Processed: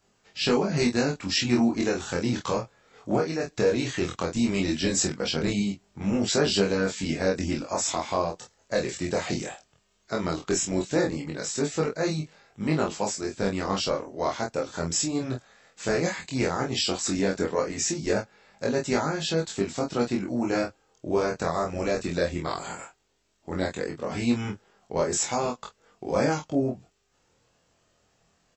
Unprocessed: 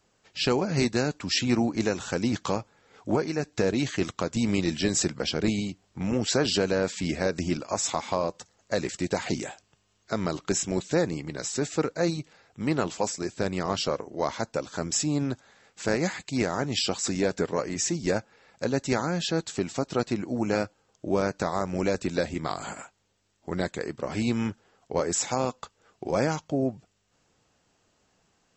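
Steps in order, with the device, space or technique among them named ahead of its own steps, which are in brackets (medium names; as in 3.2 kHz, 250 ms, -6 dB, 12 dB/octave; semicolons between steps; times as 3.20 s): double-tracked vocal (doubling 25 ms -4 dB; chorus 0.16 Hz, delay 20 ms, depth 3.4 ms); trim +2.5 dB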